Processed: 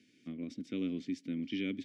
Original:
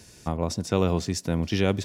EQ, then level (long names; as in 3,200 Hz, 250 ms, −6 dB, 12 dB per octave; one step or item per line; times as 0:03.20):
formant filter i
high-pass filter 110 Hz
0.0 dB